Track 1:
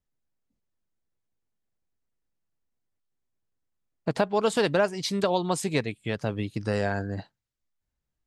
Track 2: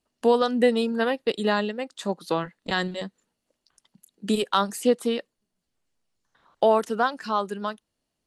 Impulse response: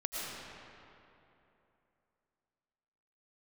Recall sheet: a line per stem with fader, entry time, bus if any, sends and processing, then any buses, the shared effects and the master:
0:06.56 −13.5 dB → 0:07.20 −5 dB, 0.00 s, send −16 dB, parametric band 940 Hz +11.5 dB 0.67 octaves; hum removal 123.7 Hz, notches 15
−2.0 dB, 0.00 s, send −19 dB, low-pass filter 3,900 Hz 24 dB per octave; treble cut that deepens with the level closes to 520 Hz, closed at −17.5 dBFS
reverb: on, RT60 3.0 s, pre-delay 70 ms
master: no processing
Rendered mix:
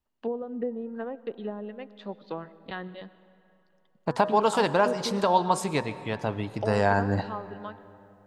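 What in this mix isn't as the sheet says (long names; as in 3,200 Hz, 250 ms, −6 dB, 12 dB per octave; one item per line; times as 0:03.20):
stem 1 −13.5 dB → −3.0 dB
stem 2 −2.0 dB → −10.5 dB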